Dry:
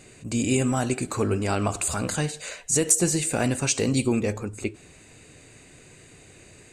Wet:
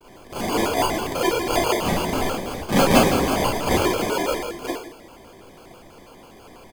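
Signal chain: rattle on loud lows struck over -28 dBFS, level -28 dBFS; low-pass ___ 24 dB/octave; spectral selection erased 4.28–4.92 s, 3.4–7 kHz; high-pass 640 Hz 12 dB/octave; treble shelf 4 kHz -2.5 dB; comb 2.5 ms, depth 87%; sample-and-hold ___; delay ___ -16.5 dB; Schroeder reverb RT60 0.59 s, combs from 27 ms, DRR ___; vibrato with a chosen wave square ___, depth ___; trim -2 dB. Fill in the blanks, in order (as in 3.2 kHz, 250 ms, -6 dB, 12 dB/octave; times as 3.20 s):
10 kHz, 27×, 164 ms, -8.5 dB, 6.1 Hz, 250 cents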